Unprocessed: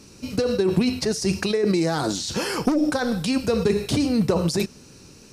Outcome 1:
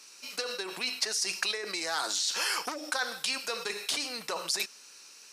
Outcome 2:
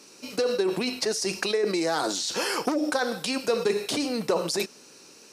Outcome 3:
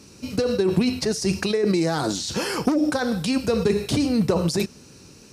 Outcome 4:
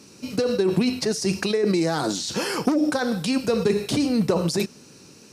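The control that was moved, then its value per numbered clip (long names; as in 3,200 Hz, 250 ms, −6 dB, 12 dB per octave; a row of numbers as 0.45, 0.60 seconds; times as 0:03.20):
high-pass filter, corner frequency: 1,200, 410, 46, 140 Hertz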